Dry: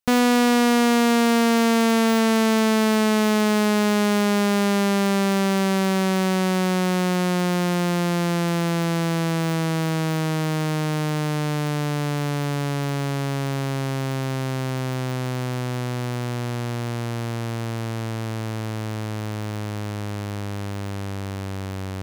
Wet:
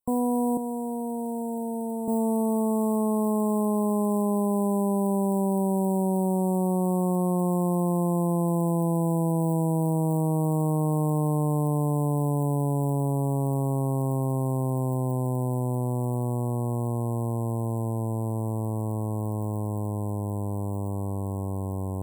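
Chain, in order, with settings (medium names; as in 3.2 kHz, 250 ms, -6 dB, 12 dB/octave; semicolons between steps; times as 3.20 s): 0.57–2.08 s: elliptic high-pass 180 Hz; peak limiter -19 dBFS, peak gain reduction 12 dB; brick-wall FIR band-stop 1.1–7.6 kHz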